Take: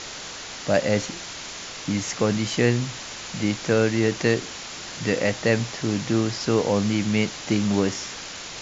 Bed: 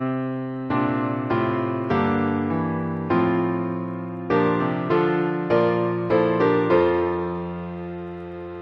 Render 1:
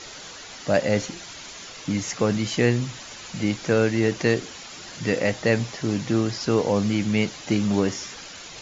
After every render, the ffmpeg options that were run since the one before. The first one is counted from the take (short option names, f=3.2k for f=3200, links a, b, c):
-af "afftdn=nr=8:nf=-37"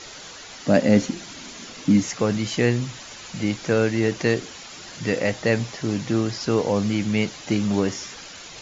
-filter_complex "[0:a]asettb=1/sr,asplit=3[a][b][c];[a]atrim=end=0.664[d];[b]atrim=start=0.66:end=2.07,asetpts=PTS-STARTPTS,afade=t=in:d=0.004:c=qsin,afade=t=out:st=1.406:d=0.004:c=qsin,equalizer=f=240:w=1.6:g=12.5[e];[c]atrim=start=2.066[f];[d][e]acrossfade=d=0.004:c1=hsin:c2=qsin[g];[g][f]acrossfade=d=0.004:c1=qsin:c2=hsin"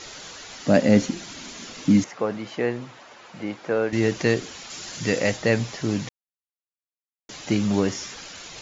-filter_complex "[0:a]asettb=1/sr,asplit=3[a][b][c];[a]atrim=end=2.044[d];[b]atrim=start=2.04:end=3.93,asetpts=PTS-STARTPTS,afade=t=in:d=0.004:c=qsin,afade=t=out:st=1.886:d=0.004:c=qsin,bandpass=f=770:t=q:w=0.73[e];[c]atrim=start=3.926[f];[d][e]acrossfade=d=0.004:c1=hsin:c2=qsin[g];[g][f]acrossfade=d=0.004:c1=qsin:c2=hsin,asettb=1/sr,asplit=3[h][i][j];[h]atrim=end=4.704[k];[i]atrim=start=4.7:end=5.37,asetpts=PTS-STARTPTS,afade=t=in:d=0.004:c=qsin,afade=t=out:st=0.666:d=0.004:c=qsin,highshelf=f=5.6k:g=9[l];[j]atrim=start=5.366[m];[k][l]acrossfade=d=0.004:c1=hsin:c2=qsin[n];[n][m]acrossfade=d=0.004:c1=qsin:c2=hsin,asplit=3[o][p][q];[o]atrim=end=6.09,asetpts=PTS-STARTPTS,afade=t=out:st=6.086:d=0.004:c=hsin[r];[p]atrim=start=6.09:end=7.29,asetpts=PTS-STARTPTS,volume=0[s];[q]atrim=start=7.29,asetpts=PTS-STARTPTS,afade=t=in:d=0.004:c=hsin[t];[r][s][t]concat=n=3:v=0:a=1"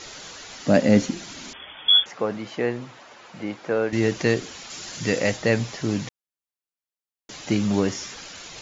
-filter_complex "[0:a]asettb=1/sr,asplit=3[a][b][c];[a]atrim=end=1.534[d];[b]atrim=start=1.53:end=2.06,asetpts=PTS-STARTPTS,afade=t=in:d=0.004:c=qsin,afade=t=out:st=0.526:d=0.004:c=qsin,lowpass=f=3.1k:t=q:w=0.5098,lowpass=f=3.1k:t=q:w=0.6013,lowpass=f=3.1k:t=q:w=0.9,lowpass=f=3.1k:t=q:w=2.563,afreqshift=-3600[e];[c]atrim=start=2.056[f];[d][e]acrossfade=d=0.004:c1=hsin:c2=qsin[g];[g][f]acrossfade=d=0.004:c1=qsin:c2=hsin"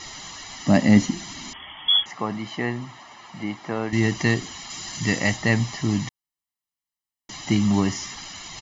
-af "aecho=1:1:1:0.73"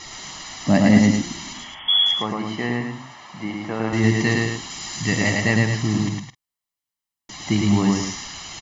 -filter_complex "[0:a]asplit=2[a][b];[b]adelay=46,volume=-14dB[c];[a][c]amix=inputs=2:normalize=0,aecho=1:1:107.9|212.8:0.794|0.398"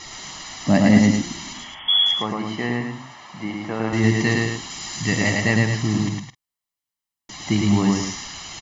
-af anull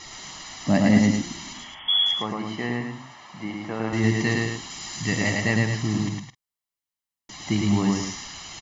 -af "volume=-3.5dB"